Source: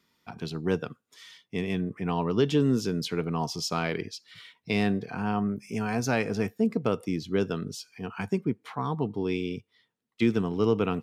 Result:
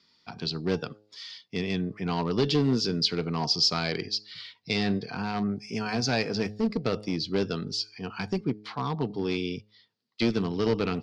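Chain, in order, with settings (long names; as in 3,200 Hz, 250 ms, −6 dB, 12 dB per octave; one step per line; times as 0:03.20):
high-pass filter 44 Hz 24 dB per octave
hum removal 105.3 Hz, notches 8
asymmetric clip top −23.5 dBFS
low-pass with resonance 4,700 Hz, resonance Q 5.7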